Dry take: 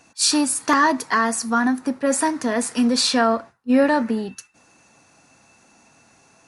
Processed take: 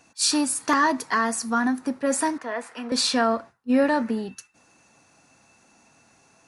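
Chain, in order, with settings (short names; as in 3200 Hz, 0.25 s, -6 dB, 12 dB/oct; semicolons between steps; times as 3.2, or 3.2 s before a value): 2.38–2.92 three-band isolator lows -16 dB, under 480 Hz, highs -17 dB, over 2900 Hz; gain -3.5 dB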